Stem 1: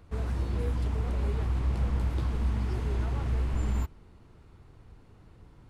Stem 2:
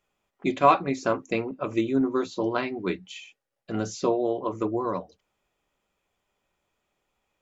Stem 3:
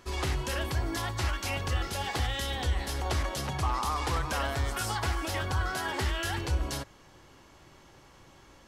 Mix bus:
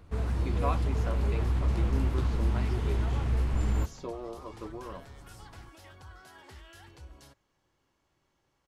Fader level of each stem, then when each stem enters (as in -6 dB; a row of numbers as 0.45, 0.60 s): +1.0, -14.5, -20.0 dB; 0.00, 0.00, 0.50 s